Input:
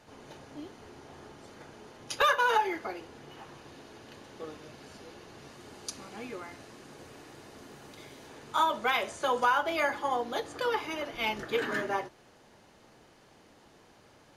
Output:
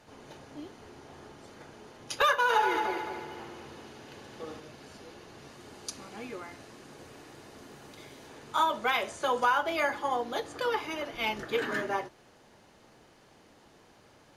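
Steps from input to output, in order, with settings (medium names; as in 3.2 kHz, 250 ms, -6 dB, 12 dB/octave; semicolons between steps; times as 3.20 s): 2.41–4.60 s: multi-head delay 73 ms, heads first and third, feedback 58%, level -7 dB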